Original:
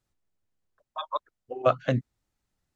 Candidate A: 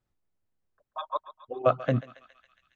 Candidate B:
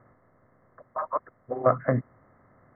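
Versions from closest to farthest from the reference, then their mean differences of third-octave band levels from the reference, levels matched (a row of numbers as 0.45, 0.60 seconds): A, B; 2.5, 6.5 decibels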